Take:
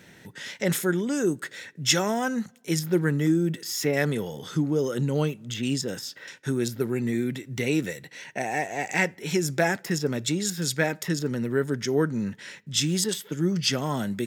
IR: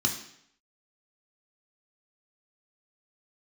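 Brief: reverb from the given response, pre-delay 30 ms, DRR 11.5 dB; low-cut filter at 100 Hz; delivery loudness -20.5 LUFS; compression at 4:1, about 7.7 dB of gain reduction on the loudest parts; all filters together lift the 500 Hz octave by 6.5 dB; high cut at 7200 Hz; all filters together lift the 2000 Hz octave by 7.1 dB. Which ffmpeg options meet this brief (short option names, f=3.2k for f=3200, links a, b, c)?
-filter_complex "[0:a]highpass=100,lowpass=7.2k,equalizer=f=500:t=o:g=8,equalizer=f=2k:t=o:g=8,acompressor=threshold=-22dB:ratio=4,asplit=2[a][b];[1:a]atrim=start_sample=2205,adelay=30[c];[b][c]afir=irnorm=-1:irlink=0,volume=-19.5dB[d];[a][d]amix=inputs=2:normalize=0,volume=6.5dB"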